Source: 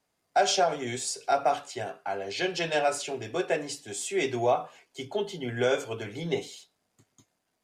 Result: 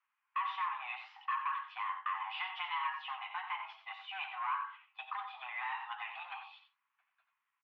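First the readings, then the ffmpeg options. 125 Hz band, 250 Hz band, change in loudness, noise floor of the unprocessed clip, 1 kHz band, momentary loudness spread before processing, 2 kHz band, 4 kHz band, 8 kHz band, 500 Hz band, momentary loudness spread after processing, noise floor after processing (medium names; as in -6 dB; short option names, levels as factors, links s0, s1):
under -40 dB, under -40 dB, -10.5 dB, -78 dBFS, -6.5 dB, 10 LU, -6.0 dB, -12.0 dB, under -40 dB, under -40 dB, 9 LU, under -85 dBFS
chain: -af "agate=range=0.398:threshold=0.00562:ratio=16:detection=peak,acompressor=threshold=0.0178:ratio=4,aresample=16000,asoftclip=type=hard:threshold=0.0211,aresample=44100,aecho=1:1:70|90:0.133|0.355,highpass=f=590:t=q:w=0.5412,highpass=f=590:t=q:w=1.307,lowpass=f=2500:t=q:w=0.5176,lowpass=f=2500:t=q:w=0.7071,lowpass=f=2500:t=q:w=1.932,afreqshift=380,volume=1.58"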